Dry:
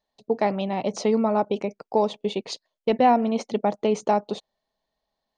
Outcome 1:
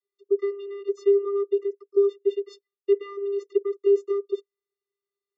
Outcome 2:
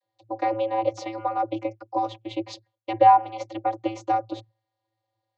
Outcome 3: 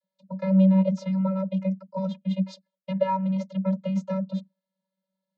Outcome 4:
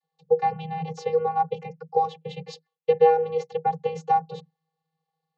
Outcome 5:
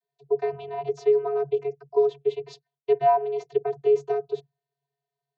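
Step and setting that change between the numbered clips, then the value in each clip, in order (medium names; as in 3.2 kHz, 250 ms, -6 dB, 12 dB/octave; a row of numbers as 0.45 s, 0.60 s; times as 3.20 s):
vocoder, frequency: 400 Hz, 110 Hz, 190 Hz, 160 Hz, 140 Hz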